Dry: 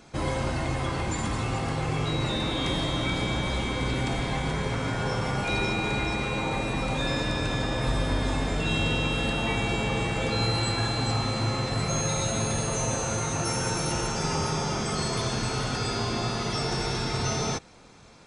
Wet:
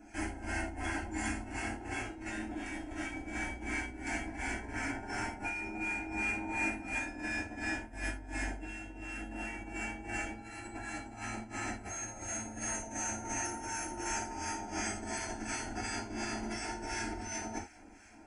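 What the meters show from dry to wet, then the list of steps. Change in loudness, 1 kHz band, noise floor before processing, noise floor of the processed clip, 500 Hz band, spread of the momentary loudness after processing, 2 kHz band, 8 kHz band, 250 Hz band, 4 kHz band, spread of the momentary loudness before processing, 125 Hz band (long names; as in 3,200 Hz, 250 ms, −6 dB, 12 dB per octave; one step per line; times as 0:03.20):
−10.5 dB, −9.5 dB, −31 dBFS, −49 dBFS, −14.5 dB, 6 LU, −5.5 dB, −7.0 dB, −10.0 dB, −18.0 dB, 3 LU, −19.0 dB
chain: notch filter 410 Hz, Q 12
two-band tremolo in antiphase 2.8 Hz, depth 70%, crossover 1,100 Hz
compressor whose output falls as the input rises −34 dBFS, ratio −0.5
phaser with its sweep stopped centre 760 Hz, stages 8
reverb whose tail is shaped and stops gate 110 ms falling, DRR −3.5 dB
level −5.5 dB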